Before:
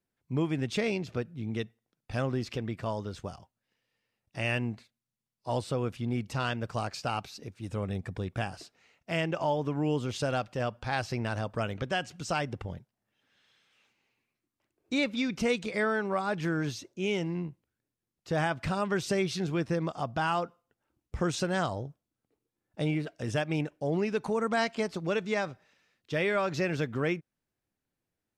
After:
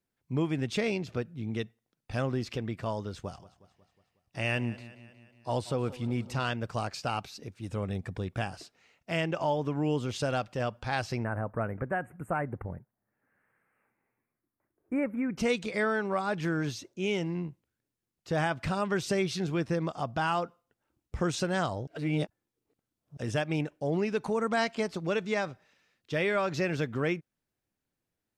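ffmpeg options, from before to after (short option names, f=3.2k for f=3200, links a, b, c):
-filter_complex "[0:a]asettb=1/sr,asplit=3[a][b][c];[a]atrim=end=3.094[d];[b]atrim=start=3.09:end=6.48,asetpts=PTS-STARTPTS,afade=t=in:d=0.004:c=qsin,afade=t=out:st=3.386:d=0.004:c=qsin,aecho=1:1:182|364|546|728|910:0.133|0.076|0.0433|0.0247|0.0141,atrim=end_sample=149499[e];[c]atrim=start=6.476[f];[d][e]acrossfade=d=0.004:c1=hsin:c2=qsin[g];[g][f]acrossfade=d=0.004:c1=qsin:c2=hsin,asplit=3[h][i][j];[h]afade=t=out:st=11.23:d=0.02[k];[i]asuperstop=centerf=4600:order=8:qfactor=0.59,afade=t=in:st=11.23:d=0.02,afade=t=out:st=15.37:d=0.02[l];[j]afade=t=in:st=15.37:d=0.02[m];[k][l][m]amix=inputs=3:normalize=0,asplit=3[n][o][p];[n]atrim=end=21.872[q];[o]atrim=start=21.868:end=23.172,asetpts=PTS-STARTPTS,areverse[r];[p]atrim=start=23.168[s];[q][r]acrossfade=d=0.004:c1=hsin:c2=hsin[t];[t][s]acrossfade=d=0.004:c1=hsin:c2=hsin"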